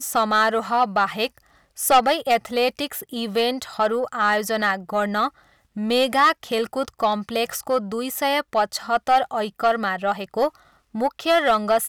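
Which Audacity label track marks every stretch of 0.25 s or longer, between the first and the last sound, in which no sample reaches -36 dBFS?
1.380000	1.780000	silence
5.290000	5.760000	silence
10.490000	10.950000	silence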